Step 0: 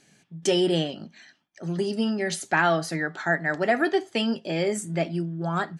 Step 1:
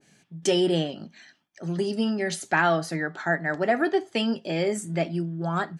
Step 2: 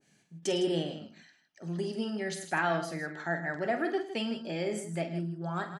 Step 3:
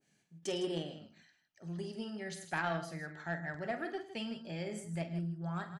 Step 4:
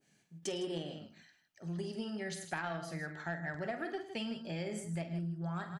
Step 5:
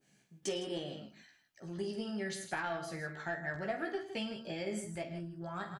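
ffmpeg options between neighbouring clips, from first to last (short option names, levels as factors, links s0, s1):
-af "adynamicequalizer=threshold=0.0158:dfrequency=1700:dqfactor=0.7:tfrequency=1700:tqfactor=0.7:attack=5:release=100:ratio=0.375:range=2.5:mode=cutabove:tftype=highshelf"
-af "aecho=1:1:47|106|158:0.335|0.188|0.266,volume=0.398"
-af "asubboost=boost=6.5:cutoff=120,aeval=exprs='0.141*(cos(1*acos(clip(val(0)/0.141,-1,1)))-cos(1*PI/2))+0.0158*(cos(3*acos(clip(val(0)/0.141,-1,1)))-cos(3*PI/2))':c=same,volume=0.668"
-af "acompressor=threshold=0.0141:ratio=6,volume=1.41"
-filter_complex "[0:a]asplit=2[s0][s1];[s1]adelay=15,volume=0.631[s2];[s0][s2]amix=inputs=2:normalize=0"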